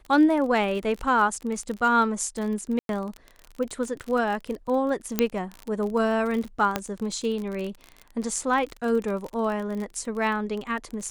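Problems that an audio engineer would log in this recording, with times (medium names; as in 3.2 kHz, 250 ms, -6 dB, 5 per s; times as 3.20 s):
crackle 34 per s -30 dBFS
2.79–2.89 s: dropout 102 ms
5.19 s: pop -6 dBFS
6.76 s: pop -9 dBFS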